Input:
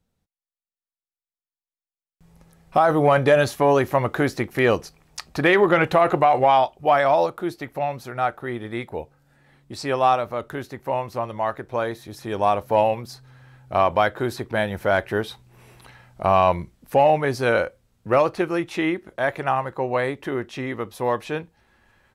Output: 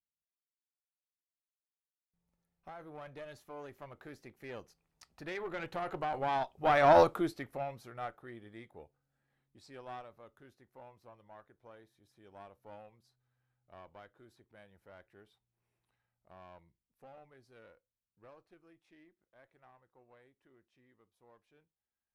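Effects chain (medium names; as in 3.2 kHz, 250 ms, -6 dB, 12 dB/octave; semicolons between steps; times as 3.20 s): single-diode clipper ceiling -17 dBFS; Doppler pass-by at 7.03 s, 11 m/s, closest 1.6 m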